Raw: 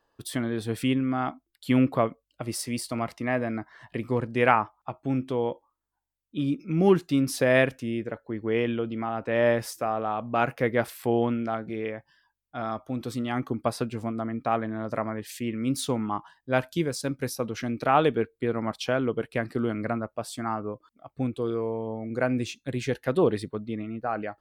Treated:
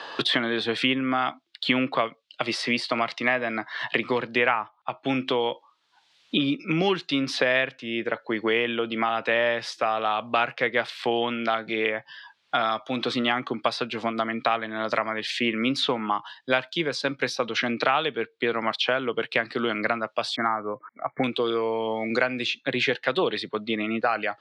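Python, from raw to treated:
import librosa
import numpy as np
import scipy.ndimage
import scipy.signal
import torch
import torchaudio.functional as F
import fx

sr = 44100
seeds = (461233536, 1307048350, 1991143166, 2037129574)

y = fx.lowpass(x, sr, hz=2800.0, slope=6, at=(4.19, 5.06))
y = fx.brickwall_lowpass(y, sr, high_hz=2300.0, at=(20.36, 21.24))
y = scipy.signal.sosfilt(scipy.signal.cheby1(3, 1.0, [130.0, 3800.0], 'bandpass', fs=sr, output='sos'), y)
y = fx.tilt_eq(y, sr, slope=4.5)
y = fx.band_squash(y, sr, depth_pct=100)
y = y * 10.0 ** (5.0 / 20.0)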